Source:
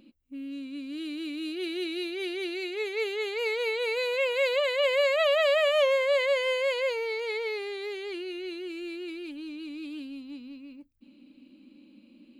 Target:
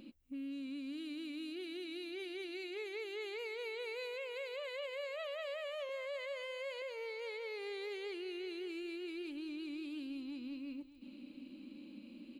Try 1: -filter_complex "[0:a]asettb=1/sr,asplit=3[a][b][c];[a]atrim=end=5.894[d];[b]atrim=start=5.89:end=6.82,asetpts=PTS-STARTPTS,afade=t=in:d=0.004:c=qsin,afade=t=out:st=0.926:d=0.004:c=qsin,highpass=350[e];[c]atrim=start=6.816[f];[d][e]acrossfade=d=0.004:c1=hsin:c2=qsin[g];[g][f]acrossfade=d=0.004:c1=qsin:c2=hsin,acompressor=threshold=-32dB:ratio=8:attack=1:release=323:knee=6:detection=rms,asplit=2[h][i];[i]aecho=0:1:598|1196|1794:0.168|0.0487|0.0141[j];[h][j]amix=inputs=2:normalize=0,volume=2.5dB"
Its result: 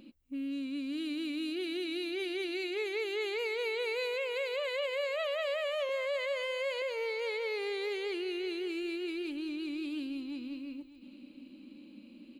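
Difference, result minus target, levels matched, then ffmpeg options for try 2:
compressor: peak gain reduction -9 dB
-filter_complex "[0:a]asettb=1/sr,asplit=3[a][b][c];[a]atrim=end=5.894[d];[b]atrim=start=5.89:end=6.82,asetpts=PTS-STARTPTS,afade=t=in:d=0.004:c=qsin,afade=t=out:st=0.926:d=0.004:c=qsin,highpass=350[e];[c]atrim=start=6.816[f];[d][e]acrossfade=d=0.004:c1=hsin:c2=qsin[g];[g][f]acrossfade=d=0.004:c1=qsin:c2=hsin,acompressor=threshold=-42dB:ratio=8:attack=1:release=323:knee=6:detection=rms,asplit=2[h][i];[i]aecho=0:1:598|1196|1794:0.168|0.0487|0.0141[j];[h][j]amix=inputs=2:normalize=0,volume=2.5dB"

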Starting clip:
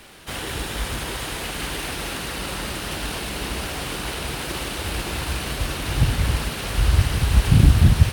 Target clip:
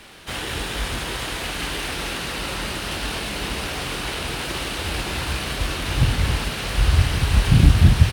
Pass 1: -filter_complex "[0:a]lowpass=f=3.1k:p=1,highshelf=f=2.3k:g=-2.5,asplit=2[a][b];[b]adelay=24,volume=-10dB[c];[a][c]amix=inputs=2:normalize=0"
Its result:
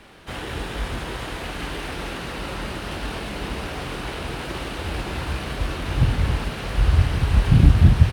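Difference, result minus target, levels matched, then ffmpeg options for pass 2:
4000 Hz band -6.0 dB
-filter_complex "[0:a]lowpass=f=3.1k:p=1,highshelf=f=2.3k:g=8,asplit=2[a][b];[b]adelay=24,volume=-10dB[c];[a][c]amix=inputs=2:normalize=0"

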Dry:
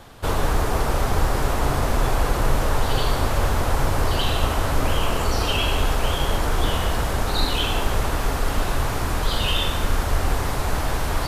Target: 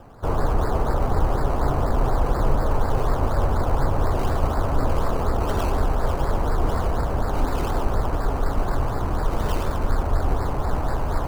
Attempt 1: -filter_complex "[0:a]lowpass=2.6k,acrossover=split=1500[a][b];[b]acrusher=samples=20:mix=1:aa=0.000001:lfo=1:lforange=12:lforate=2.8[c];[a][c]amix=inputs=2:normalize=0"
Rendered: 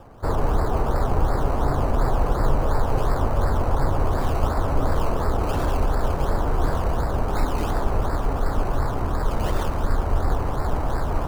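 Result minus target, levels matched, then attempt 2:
decimation with a swept rate: distortion +4 dB
-filter_complex "[0:a]lowpass=2.6k,acrossover=split=1500[a][b];[b]acrusher=samples=20:mix=1:aa=0.000001:lfo=1:lforange=12:lforate=4.1[c];[a][c]amix=inputs=2:normalize=0"

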